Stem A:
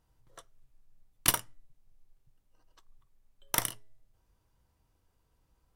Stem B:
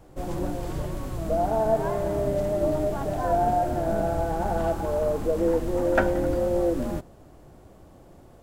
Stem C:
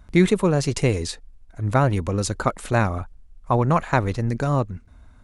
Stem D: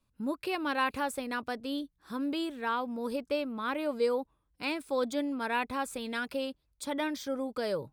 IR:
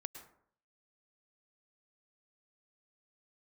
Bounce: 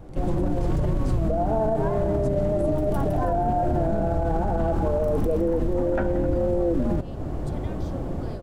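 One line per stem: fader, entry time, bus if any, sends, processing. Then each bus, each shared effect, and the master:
-11.5 dB, 1.50 s, bus A, no send, echo send -8.5 dB, none
+2.5 dB, 0.00 s, bus B, no send, no echo send, low-pass 2.7 kHz 6 dB/octave; level rider gain up to 12.5 dB
-9.0 dB, 0.00 s, bus A, no send, no echo send, treble shelf 7 kHz +8.5 dB; compression, threshold -23 dBFS, peak gain reduction 12 dB
-10.5 dB, 0.65 s, bus B, no send, no echo send, Bessel low-pass 12 kHz; compression, threshold -31 dBFS, peak gain reduction 7.5 dB
bus A: 0.0 dB, wavefolder -29 dBFS; compression, threshold -45 dBFS, peak gain reduction 12 dB
bus B: 0.0 dB, bass shelf 370 Hz +8.5 dB; compression 2:1, threshold -20 dBFS, peak gain reduction 10 dB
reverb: none
echo: feedback delay 161 ms, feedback 52%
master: peak limiter -15.5 dBFS, peak gain reduction 11 dB

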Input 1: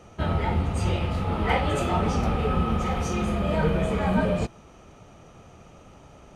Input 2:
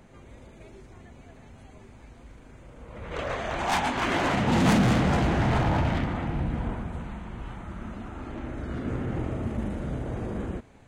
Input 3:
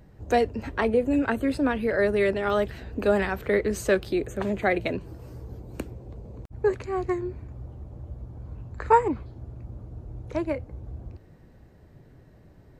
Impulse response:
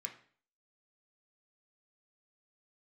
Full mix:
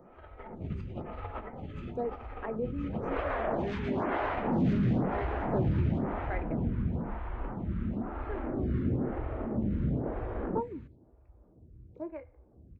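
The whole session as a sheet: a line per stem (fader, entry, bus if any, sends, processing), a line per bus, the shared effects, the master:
-12.5 dB, 0.00 s, no send, compressor with a negative ratio -31 dBFS, ratio -0.5; peaking EQ 2.2 kHz +5.5 dB 1.8 oct
-2.5 dB, 0.00 s, no send, compression 6:1, threshold -30 dBFS, peak gain reduction 12 dB
-19.0 dB, 1.65 s, send -5.5 dB, none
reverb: on, RT60 0.45 s, pre-delay 3 ms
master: level rider gain up to 10 dB; tape spacing loss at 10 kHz 43 dB; lamp-driven phase shifter 1 Hz

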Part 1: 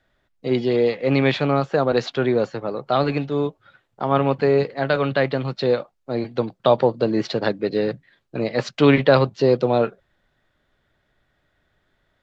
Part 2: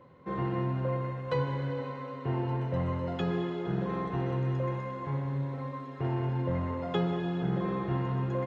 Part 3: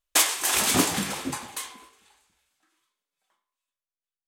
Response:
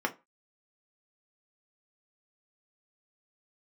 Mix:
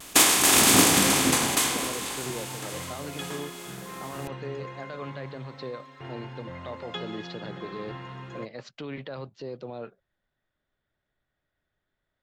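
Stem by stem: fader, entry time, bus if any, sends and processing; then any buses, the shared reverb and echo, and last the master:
-14.5 dB, 0.00 s, no send, peak limiter -14 dBFS, peak gain reduction 11.5 dB
-2.5 dB, 0.00 s, no send, tilt shelf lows -9.5 dB, about 1.2 kHz
0.0 dB, 0.00 s, no send, spectral levelling over time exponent 0.4; vibrato 0.57 Hz 26 cents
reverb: none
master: none

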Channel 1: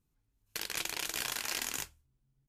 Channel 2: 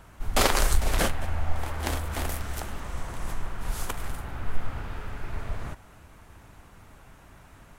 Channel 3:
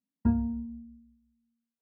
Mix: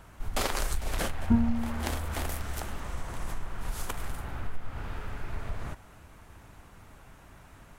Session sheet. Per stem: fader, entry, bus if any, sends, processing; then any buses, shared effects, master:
-16.5 dB, 0.00 s, no send, low-pass 3 kHz
-1.0 dB, 0.00 s, no send, compression 2.5:1, threshold -27 dBFS, peak gain reduction 9 dB
+2.0 dB, 1.05 s, no send, none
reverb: none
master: none

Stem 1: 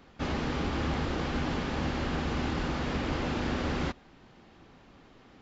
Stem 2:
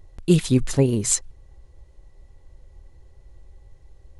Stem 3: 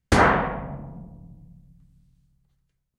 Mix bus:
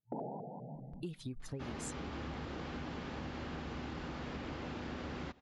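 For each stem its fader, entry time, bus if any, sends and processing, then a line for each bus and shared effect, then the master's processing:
-1.0 dB, 1.40 s, no send, high-pass 55 Hz
-7.0 dB, 0.75 s, no send, expander on every frequency bin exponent 1.5; compression 2.5:1, threshold -24 dBFS, peak gain reduction 8.5 dB
-9.5 dB, 0.00 s, no send, FFT band-pass 120–910 Hz; vibrato with a chosen wave saw up 5 Hz, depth 250 cents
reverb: none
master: treble shelf 7.1 kHz -5 dB; compression 3:1, threshold -43 dBFS, peak gain reduction 13.5 dB

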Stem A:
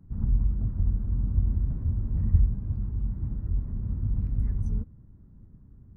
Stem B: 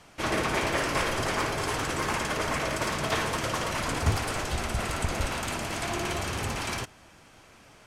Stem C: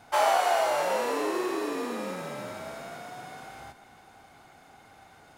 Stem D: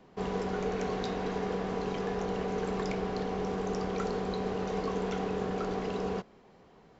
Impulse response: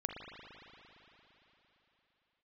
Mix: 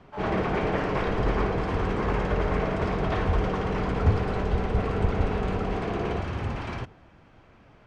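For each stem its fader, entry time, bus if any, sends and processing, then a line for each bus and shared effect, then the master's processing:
-5.5 dB, 0.95 s, no send, none
-1.0 dB, 0.00 s, no send, bass shelf 220 Hz +6 dB
-9.0 dB, 0.00 s, no send, gain riding
+2.0 dB, 0.00 s, no send, none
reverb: none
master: low-pass 3.7 kHz 12 dB/octave; treble shelf 2.3 kHz -9 dB

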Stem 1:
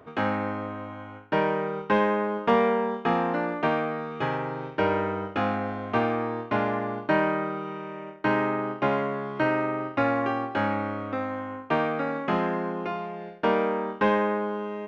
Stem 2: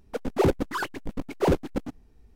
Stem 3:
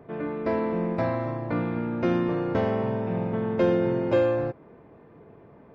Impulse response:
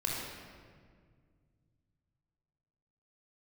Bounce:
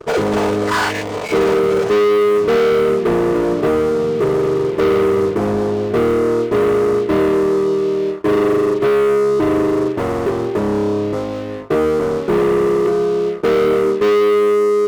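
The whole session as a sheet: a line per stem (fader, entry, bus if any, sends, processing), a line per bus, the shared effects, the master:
-5.0 dB, 0.00 s, no send, resonant low-pass 410 Hz, resonance Q 4.9
+0.5 dB, 0.00 s, no send, every event in the spectrogram widened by 120 ms; compression 6:1, threshold -27 dBFS, peak gain reduction 14.5 dB; FFT band-pass 420–9000 Hz
-18.5 dB, 0.85 s, no send, comb filter that takes the minimum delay 0.39 ms; peak limiter -18 dBFS, peak gain reduction 6.5 dB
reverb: none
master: waveshaping leveller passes 5; comb of notches 270 Hz

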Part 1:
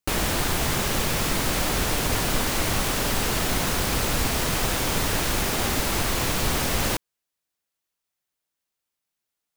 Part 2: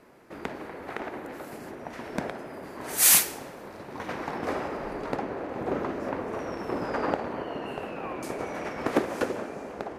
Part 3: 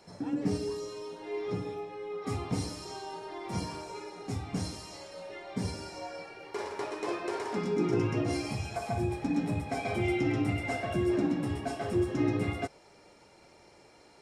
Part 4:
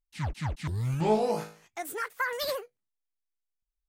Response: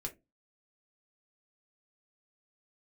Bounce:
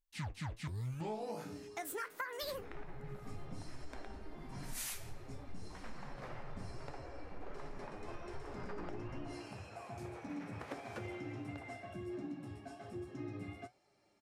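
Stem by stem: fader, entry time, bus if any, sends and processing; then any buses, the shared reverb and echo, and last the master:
-16.0 dB, 2.35 s, send -6 dB, loudest bins only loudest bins 8; barber-pole phaser -0.63 Hz
-12.5 dB, 1.75 s, no send, frequency weighting A
-10.5 dB, 1.00 s, no send, comb of notches 480 Hz
+2.0 dB, 0.00 s, no send, none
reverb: on, pre-delay 3 ms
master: flange 1.3 Hz, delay 6.7 ms, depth 4 ms, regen +71%; compression 10:1, threshold -38 dBFS, peak gain reduction 15 dB

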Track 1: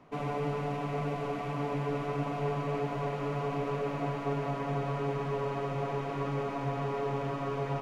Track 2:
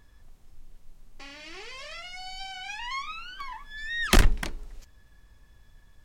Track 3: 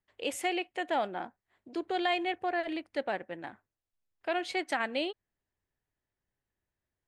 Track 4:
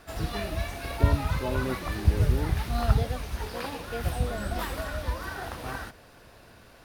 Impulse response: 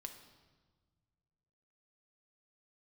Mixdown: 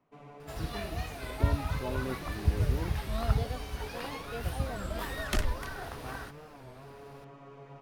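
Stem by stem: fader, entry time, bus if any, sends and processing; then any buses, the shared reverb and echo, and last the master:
-16.5 dB, 0.00 s, no send, none
-12.0 dB, 1.20 s, no send, none
mute
-5.0 dB, 0.40 s, no send, none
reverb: none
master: warped record 33 1/3 rpm, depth 160 cents

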